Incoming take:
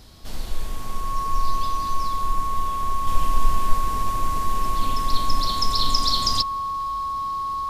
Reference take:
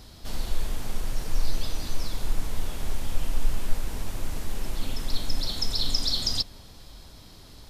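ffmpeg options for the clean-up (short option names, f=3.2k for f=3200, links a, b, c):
-af "bandreject=f=1.1k:w=30,asetnsamples=n=441:p=0,asendcmd='3.07 volume volume -4dB',volume=0dB"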